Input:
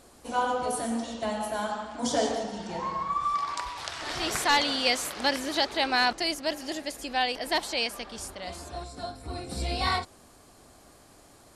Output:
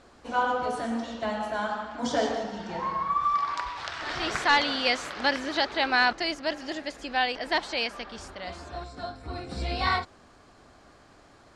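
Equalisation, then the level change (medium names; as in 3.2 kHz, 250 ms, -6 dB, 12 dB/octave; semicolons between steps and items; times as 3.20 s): distance through air 140 m; peaking EQ 1.5 kHz +5 dB 0.99 oct; treble shelf 4.6 kHz +5 dB; 0.0 dB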